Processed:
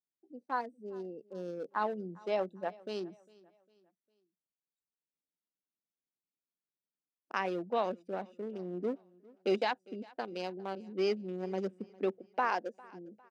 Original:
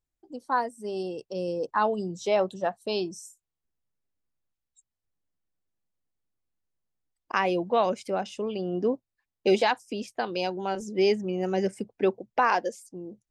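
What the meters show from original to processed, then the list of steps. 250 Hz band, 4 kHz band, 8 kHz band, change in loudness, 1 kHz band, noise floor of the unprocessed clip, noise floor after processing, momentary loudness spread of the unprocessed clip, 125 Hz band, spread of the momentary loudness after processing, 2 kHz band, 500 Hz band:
-8.5 dB, -10.5 dB, under -15 dB, -8.5 dB, -8.5 dB, under -85 dBFS, under -85 dBFS, 11 LU, -9.5 dB, 12 LU, -8.5 dB, -8.5 dB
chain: local Wiener filter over 41 samples; high-pass 170 Hz 24 dB/octave; on a send: feedback delay 403 ms, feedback 40%, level -23.5 dB; on the sum: trim -7.5 dB

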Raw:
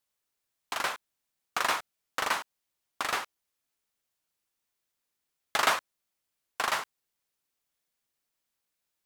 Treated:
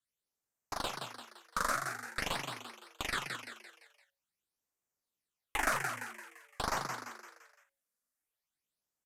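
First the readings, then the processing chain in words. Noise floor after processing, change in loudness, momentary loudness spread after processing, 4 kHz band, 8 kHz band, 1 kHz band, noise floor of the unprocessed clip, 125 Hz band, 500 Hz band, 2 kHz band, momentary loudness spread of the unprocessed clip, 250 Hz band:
under -85 dBFS, -6.0 dB, 18 LU, -6.0 dB, -3.5 dB, -5.0 dB, -84 dBFS, +9.0 dB, -4.0 dB, -4.5 dB, 17 LU, +2.0 dB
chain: Chebyshev shaper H 6 -18 dB, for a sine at -9.5 dBFS; in parallel at +1 dB: level held to a coarse grid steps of 16 dB; on the sum: phase shifter stages 8, 0.47 Hz, lowest notch 100–4200 Hz; on a send: frequency-shifting echo 171 ms, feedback 45%, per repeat +110 Hz, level -5.5 dB; on the sum: resampled via 32 kHz; loudspeaker Doppler distortion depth 0.29 ms; trim -7 dB

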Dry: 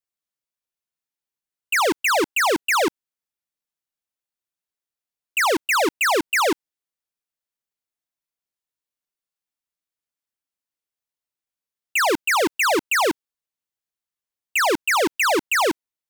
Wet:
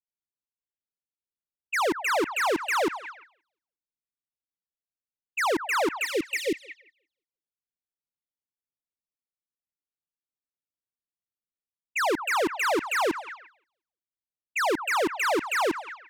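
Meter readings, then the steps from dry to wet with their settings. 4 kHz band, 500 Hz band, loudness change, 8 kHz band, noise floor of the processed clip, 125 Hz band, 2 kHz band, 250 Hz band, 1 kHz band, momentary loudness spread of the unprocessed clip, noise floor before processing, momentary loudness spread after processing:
-8.5 dB, -5.0 dB, -6.5 dB, -10.0 dB, under -85 dBFS, -4.5 dB, -6.5 dB, -4.5 dB, -5.5 dB, 5 LU, under -85 dBFS, 10 LU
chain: spectral replace 5.98–6.82 s, 570–1800 Hz; treble shelf 2.5 kHz -6 dB; on a send: repeats whose band climbs or falls 176 ms, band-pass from 1.1 kHz, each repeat 0.7 oct, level -9 dB; on the sum: level-controlled noise filter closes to 370 Hz, open at -23 dBFS; trim -4.5 dB

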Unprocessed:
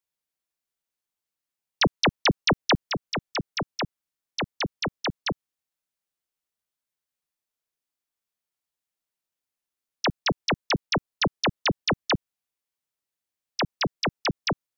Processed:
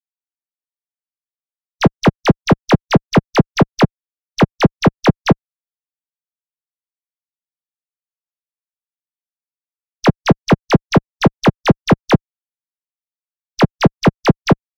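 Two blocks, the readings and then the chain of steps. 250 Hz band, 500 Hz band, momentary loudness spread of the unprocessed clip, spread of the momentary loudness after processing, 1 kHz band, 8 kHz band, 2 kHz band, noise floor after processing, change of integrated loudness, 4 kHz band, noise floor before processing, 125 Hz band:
+16.5 dB, +14.0 dB, 10 LU, 3 LU, +10.5 dB, no reading, +6.0 dB, under -85 dBFS, +11.5 dB, +2.0 dB, under -85 dBFS, +17.0 dB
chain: fuzz box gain 52 dB, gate -57 dBFS; spectral contrast expander 2.5:1; trim +8.5 dB

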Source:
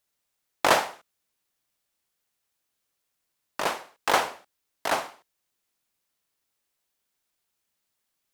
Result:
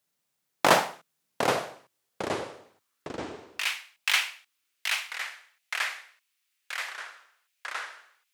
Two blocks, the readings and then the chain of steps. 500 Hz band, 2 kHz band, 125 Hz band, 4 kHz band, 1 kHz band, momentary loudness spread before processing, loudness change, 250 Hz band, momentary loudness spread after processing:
+0.5 dB, +3.0 dB, +6.5 dB, +3.5 dB, -1.5 dB, 14 LU, -2.5 dB, +3.5 dB, 18 LU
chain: high-pass sweep 150 Hz -> 2.4 kHz, 1.21–3.52 s; ever faster or slower copies 590 ms, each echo -4 st, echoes 3, each echo -6 dB

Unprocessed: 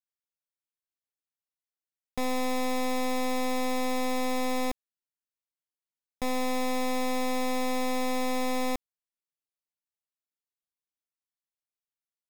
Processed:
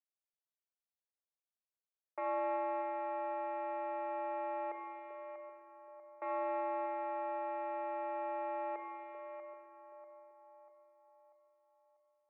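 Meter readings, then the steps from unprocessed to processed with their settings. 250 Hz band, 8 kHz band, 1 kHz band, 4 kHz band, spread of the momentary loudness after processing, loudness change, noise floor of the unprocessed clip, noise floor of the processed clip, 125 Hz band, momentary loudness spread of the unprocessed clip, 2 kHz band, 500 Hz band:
-17.5 dB, under -40 dB, -4.5 dB, under -30 dB, 19 LU, -9.5 dB, under -85 dBFS, under -85 dBFS, no reading, 4 LU, -13.5 dB, -6.0 dB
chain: two-band feedback delay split 560 Hz, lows 387 ms, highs 641 ms, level -13.5 dB; peak limiter -29.5 dBFS, peak gain reduction 6.5 dB; level-controlled noise filter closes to 790 Hz, open at -30.5 dBFS; spring tank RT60 1.5 s, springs 30/39 ms, chirp 65 ms, DRR 4.5 dB; mistuned SSB +83 Hz 360–2000 Hz; trim -3 dB

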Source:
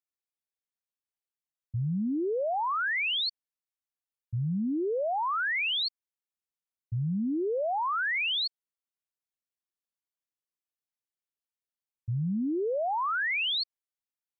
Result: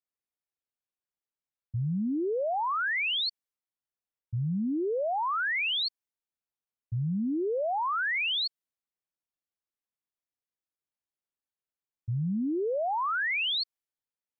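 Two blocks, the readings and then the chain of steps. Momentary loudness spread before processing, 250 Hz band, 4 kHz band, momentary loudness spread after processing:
8 LU, 0.0 dB, 0.0 dB, 8 LU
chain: tape noise reduction on one side only decoder only

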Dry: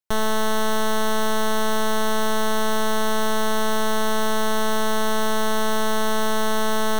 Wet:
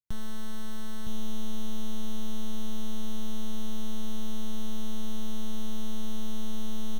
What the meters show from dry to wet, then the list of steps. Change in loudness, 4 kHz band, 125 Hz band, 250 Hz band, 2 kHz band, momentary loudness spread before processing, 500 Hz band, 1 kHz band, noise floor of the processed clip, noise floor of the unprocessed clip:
-16.5 dB, -15.5 dB, no reading, -9.5 dB, -26.0 dB, 0 LU, -24.0 dB, -26.0 dB, -24 dBFS, -19 dBFS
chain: FFT filter 130 Hz 0 dB, 530 Hz -26 dB, 3.3 kHz -15 dB; peak limiter -26 dBFS, peak gain reduction 7.5 dB; on a send: delay 963 ms -5 dB; on the sum: trim +4 dB

